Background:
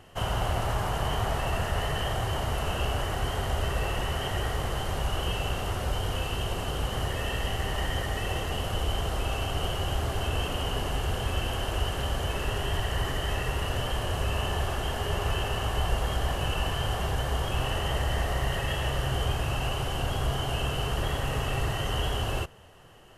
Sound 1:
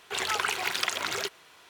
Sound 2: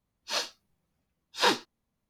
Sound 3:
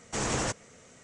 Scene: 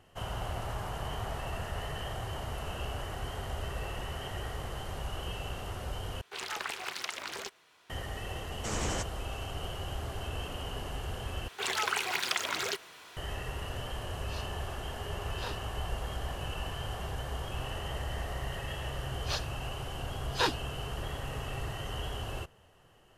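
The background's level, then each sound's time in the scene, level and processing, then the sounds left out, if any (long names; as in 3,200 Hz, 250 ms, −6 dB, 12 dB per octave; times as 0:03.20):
background −8.5 dB
0:06.21: overwrite with 1 −8.5 dB + highs frequency-modulated by the lows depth 0.44 ms
0:08.51: mix in 3 −5 dB
0:11.48: overwrite with 1 −3.5 dB + mu-law and A-law mismatch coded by mu
0:14.00: mix in 2 −18 dB
0:18.97: mix in 2 −4.5 dB + harmonic-percussive split with one part muted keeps percussive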